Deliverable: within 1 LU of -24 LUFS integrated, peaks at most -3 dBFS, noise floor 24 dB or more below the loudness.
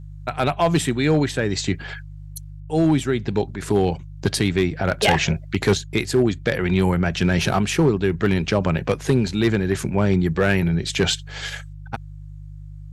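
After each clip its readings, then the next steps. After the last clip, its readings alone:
clipped 1.1%; flat tops at -10.0 dBFS; hum 50 Hz; harmonics up to 150 Hz; hum level -36 dBFS; loudness -21.0 LUFS; peak -10.0 dBFS; loudness target -24.0 LUFS
-> clip repair -10 dBFS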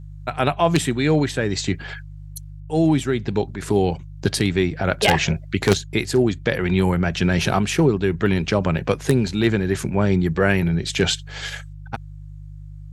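clipped 0.0%; hum 50 Hz; harmonics up to 150 Hz; hum level -36 dBFS
-> de-hum 50 Hz, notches 3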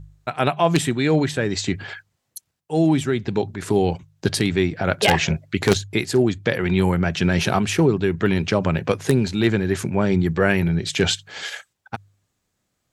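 hum none; loudness -21.0 LUFS; peak -1.0 dBFS; loudness target -24.0 LUFS
-> gain -3 dB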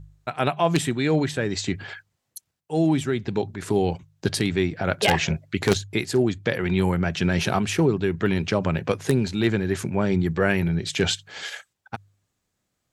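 loudness -24.0 LUFS; peak -4.0 dBFS; noise floor -78 dBFS

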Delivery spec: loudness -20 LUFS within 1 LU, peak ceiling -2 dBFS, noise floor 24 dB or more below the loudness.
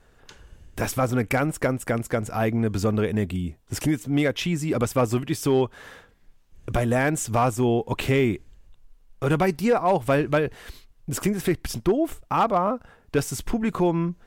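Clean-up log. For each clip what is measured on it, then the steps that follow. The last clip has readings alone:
clipped 0.3%; flat tops at -13.0 dBFS; loudness -24.5 LUFS; peak -13.0 dBFS; loudness target -20.0 LUFS
-> clip repair -13 dBFS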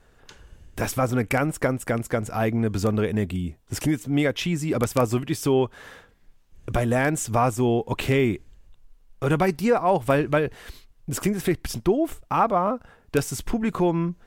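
clipped 0.0%; loudness -24.5 LUFS; peak -4.0 dBFS; loudness target -20.0 LUFS
-> gain +4.5 dB; limiter -2 dBFS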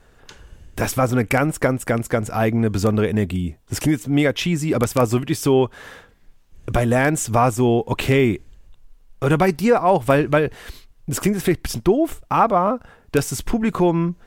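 loudness -20.0 LUFS; peak -2.0 dBFS; noise floor -53 dBFS

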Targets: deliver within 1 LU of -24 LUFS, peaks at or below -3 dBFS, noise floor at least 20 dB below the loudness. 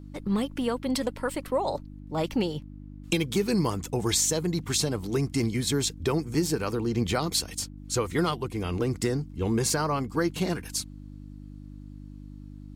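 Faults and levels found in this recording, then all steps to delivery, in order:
hum 50 Hz; harmonics up to 300 Hz; hum level -40 dBFS; loudness -28.0 LUFS; peak -12.0 dBFS; loudness target -24.0 LUFS
-> de-hum 50 Hz, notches 6; gain +4 dB

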